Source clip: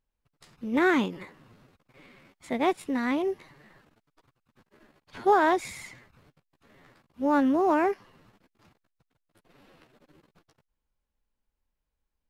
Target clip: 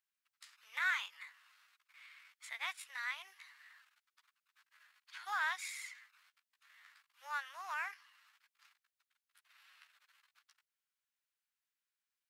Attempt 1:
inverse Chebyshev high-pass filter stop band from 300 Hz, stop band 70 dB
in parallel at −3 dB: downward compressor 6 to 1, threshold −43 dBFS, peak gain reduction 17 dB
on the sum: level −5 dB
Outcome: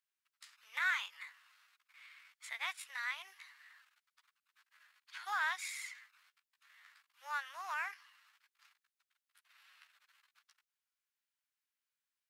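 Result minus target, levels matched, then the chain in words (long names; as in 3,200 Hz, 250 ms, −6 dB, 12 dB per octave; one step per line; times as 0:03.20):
downward compressor: peak gain reduction −8 dB
inverse Chebyshev high-pass filter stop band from 300 Hz, stop band 70 dB
in parallel at −3 dB: downward compressor 6 to 1, threshold −52.5 dBFS, peak gain reduction 25 dB
on the sum: level −5 dB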